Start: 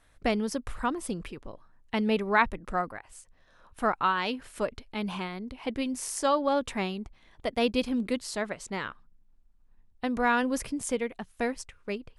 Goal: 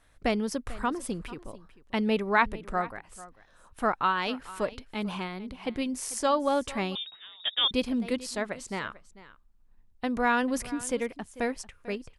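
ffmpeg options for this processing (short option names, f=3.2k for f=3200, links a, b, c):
-filter_complex "[0:a]asplit=2[a][b];[b]aecho=0:1:444:0.126[c];[a][c]amix=inputs=2:normalize=0,asettb=1/sr,asplit=3[d][e][f];[d]atrim=end=6.954[g];[e]atrim=start=6.95:end=7.71,asetpts=PTS-STARTPTS,afade=t=in:d=0.004:c=qsin,afade=t=out:st=0.756:d=0.004:c=qsin,lowpass=f=3.2k:t=q:w=0.5098,lowpass=f=3.2k:t=q:w=0.6013,lowpass=f=3.2k:t=q:w=0.9,lowpass=f=3.2k:t=q:w=2.563,afreqshift=-3800[h];[f]atrim=start=7.706[i];[g][h]acrossfade=d=0.004:c1=hsin:c2=qsin[j];[j][i]acrossfade=d=0.004:c1=qsin:c2=hsin"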